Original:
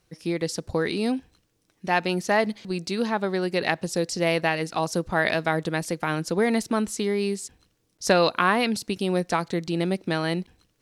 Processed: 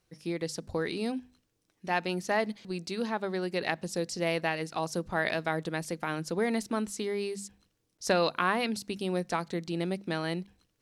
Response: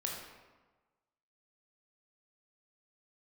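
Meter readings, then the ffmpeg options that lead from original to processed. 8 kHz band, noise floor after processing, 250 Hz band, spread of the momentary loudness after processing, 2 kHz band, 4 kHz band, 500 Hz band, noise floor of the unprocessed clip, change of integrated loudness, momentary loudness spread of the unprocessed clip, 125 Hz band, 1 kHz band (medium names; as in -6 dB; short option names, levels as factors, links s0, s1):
-6.5 dB, -77 dBFS, -7.0 dB, 8 LU, -6.5 dB, -6.5 dB, -6.5 dB, -70 dBFS, -6.5 dB, 8 LU, -7.0 dB, -6.5 dB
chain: -af "bandreject=f=50:t=h:w=6,bandreject=f=100:t=h:w=6,bandreject=f=150:t=h:w=6,bandreject=f=200:t=h:w=6,bandreject=f=250:t=h:w=6,volume=0.473"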